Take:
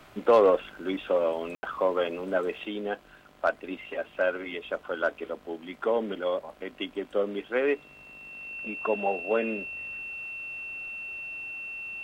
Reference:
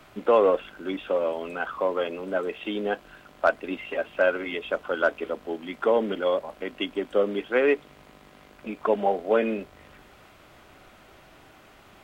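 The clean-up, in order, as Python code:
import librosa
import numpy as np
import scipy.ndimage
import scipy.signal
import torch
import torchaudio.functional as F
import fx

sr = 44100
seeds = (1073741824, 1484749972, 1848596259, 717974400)

y = fx.fix_declip(x, sr, threshold_db=-11.5)
y = fx.notch(y, sr, hz=2700.0, q=30.0)
y = fx.fix_ambience(y, sr, seeds[0], print_start_s=2.93, print_end_s=3.43, start_s=1.55, end_s=1.63)
y = fx.gain(y, sr, db=fx.steps((0.0, 0.0), (2.65, 4.5)))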